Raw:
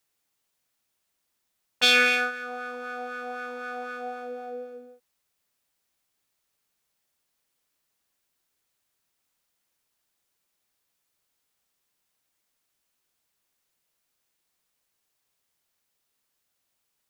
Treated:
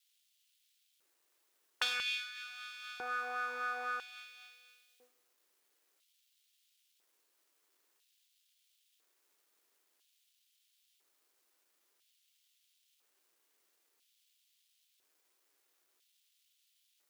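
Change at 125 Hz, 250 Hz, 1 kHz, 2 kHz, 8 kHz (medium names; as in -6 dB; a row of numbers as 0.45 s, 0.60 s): no reading, -25.0 dB, -7.5 dB, -12.5 dB, -13.0 dB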